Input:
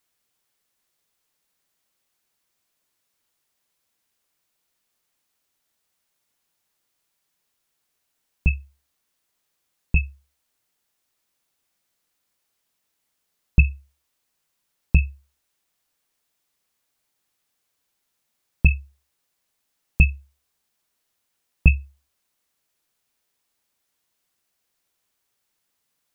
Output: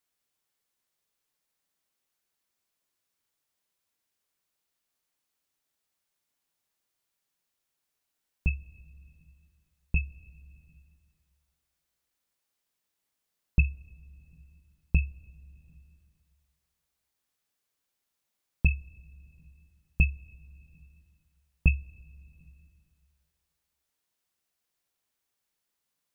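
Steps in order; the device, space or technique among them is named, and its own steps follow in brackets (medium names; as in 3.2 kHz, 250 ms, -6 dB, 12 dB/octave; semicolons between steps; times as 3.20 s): compressed reverb return (on a send at -8 dB: reverberation RT60 1.7 s, pre-delay 29 ms + compression, threshold -33 dBFS, peak gain reduction 20.5 dB); on the sum: trim -7.5 dB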